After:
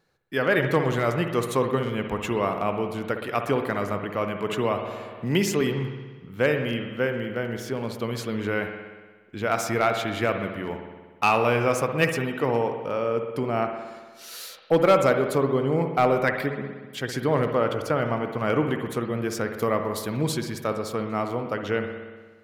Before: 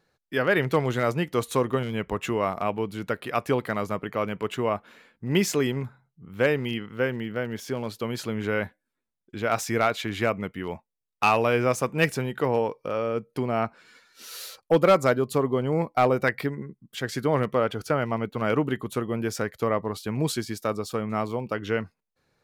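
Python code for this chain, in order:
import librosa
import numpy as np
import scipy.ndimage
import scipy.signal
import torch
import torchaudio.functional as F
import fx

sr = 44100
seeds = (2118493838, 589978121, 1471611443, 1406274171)

y = fx.high_shelf(x, sr, hz=6400.0, db=11.5, at=(19.57, 20.2))
y = fx.rev_spring(y, sr, rt60_s=1.4, pass_ms=(59,), chirp_ms=75, drr_db=5.5)
y = fx.band_squash(y, sr, depth_pct=40, at=(4.49, 5.61))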